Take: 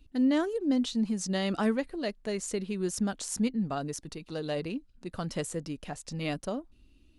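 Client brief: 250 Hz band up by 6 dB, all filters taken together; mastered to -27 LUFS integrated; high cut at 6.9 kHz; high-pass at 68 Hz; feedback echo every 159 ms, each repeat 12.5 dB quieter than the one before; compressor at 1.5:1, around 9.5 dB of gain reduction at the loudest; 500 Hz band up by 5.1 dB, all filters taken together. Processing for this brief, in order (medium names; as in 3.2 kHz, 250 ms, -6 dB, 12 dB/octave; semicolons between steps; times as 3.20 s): high-pass 68 Hz; low-pass 6.9 kHz; peaking EQ 250 Hz +6 dB; peaking EQ 500 Hz +4.5 dB; compression 1.5:1, threshold -43 dBFS; feedback delay 159 ms, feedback 24%, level -12.5 dB; trim +7.5 dB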